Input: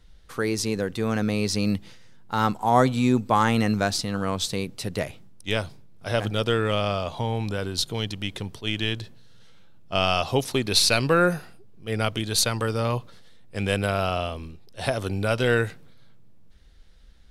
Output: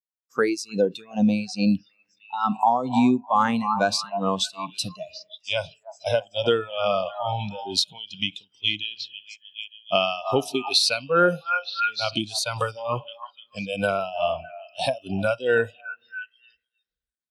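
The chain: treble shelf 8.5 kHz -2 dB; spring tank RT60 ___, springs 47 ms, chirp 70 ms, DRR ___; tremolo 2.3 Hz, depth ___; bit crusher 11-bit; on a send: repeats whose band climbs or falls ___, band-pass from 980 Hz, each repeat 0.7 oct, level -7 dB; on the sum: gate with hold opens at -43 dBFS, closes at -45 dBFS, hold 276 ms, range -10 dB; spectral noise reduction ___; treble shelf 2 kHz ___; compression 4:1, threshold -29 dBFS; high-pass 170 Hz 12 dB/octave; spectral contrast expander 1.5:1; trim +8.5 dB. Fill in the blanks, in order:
2.3 s, 16 dB, 76%, 304 ms, 17 dB, +4.5 dB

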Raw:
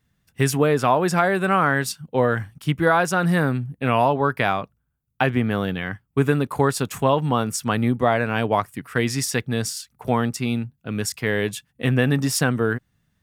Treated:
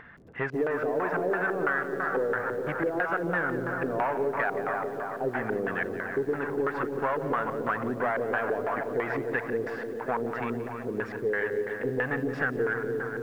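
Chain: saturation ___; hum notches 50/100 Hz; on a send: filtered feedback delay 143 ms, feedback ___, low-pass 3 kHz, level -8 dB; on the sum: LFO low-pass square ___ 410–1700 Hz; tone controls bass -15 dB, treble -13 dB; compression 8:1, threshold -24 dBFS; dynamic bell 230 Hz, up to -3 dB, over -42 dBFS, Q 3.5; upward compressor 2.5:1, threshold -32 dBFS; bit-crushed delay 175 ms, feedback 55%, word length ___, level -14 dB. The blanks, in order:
-17.5 dBFS, 80%, 3 Hz, 8-bit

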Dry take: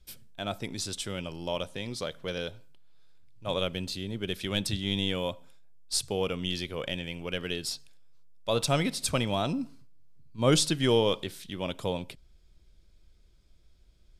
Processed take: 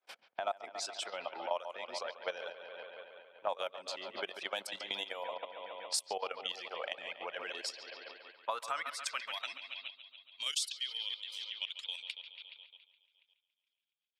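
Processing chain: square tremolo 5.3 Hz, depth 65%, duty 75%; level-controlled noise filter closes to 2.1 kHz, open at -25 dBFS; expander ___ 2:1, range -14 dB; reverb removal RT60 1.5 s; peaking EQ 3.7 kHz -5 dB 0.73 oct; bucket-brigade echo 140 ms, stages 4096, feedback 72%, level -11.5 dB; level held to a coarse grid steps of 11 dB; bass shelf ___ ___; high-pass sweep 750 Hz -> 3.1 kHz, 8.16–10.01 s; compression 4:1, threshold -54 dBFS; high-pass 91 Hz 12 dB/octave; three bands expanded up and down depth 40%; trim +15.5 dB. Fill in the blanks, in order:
-51 dBFS, 130 Hz, -11 dB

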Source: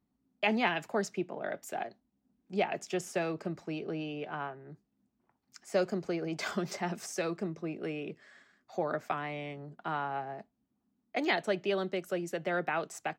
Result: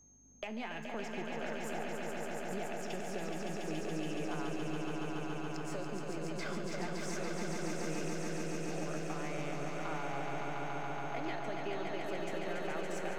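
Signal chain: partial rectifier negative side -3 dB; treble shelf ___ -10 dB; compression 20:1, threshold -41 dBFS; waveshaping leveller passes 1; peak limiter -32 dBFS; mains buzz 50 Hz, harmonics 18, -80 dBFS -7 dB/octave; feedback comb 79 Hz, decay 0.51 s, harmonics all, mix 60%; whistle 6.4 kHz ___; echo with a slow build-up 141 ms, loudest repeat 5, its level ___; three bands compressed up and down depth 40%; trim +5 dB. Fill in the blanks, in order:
8.7 kHz, -73 dBFS, -5 dB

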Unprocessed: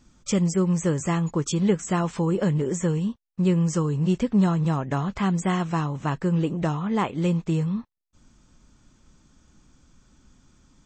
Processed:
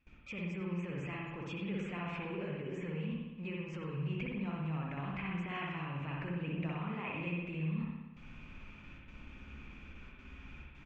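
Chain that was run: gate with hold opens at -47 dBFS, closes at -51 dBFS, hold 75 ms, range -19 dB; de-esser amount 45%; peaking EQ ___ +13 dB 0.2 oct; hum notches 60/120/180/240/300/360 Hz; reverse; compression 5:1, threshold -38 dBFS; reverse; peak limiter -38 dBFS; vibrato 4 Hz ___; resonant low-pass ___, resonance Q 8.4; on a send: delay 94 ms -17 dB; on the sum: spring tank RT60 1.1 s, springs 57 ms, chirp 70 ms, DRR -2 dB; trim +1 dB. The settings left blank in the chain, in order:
65 Hz, 18 cents, 2.5 kHz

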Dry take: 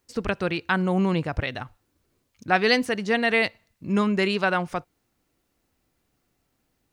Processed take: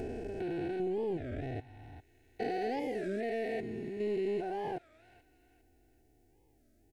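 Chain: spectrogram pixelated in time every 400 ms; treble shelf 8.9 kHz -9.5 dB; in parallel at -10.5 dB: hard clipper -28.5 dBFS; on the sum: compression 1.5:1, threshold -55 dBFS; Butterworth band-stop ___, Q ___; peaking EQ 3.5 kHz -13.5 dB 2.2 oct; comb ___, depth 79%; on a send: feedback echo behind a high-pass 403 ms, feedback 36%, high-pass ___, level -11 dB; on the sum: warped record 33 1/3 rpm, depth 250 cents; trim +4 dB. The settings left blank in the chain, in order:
1.2 kHz, 1.3, 2.7 ms, 1.7 kHz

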